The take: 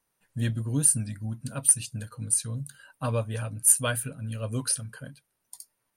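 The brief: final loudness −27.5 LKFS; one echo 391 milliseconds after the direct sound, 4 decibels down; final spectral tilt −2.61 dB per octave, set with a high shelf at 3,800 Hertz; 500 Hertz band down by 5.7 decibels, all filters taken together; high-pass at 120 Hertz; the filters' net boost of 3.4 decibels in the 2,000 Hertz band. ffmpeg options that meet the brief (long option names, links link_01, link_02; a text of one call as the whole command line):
ffmpeg -i in.wav -af "highpass=120,equalizer=frequency=500:width_type=o:gain=-7,equalizer=frequency=2000:width_type=o:gain=5,highshelf=frequency=3800:gain=3,aecho=1:1:391:0.631,volume=-5dB" out.wav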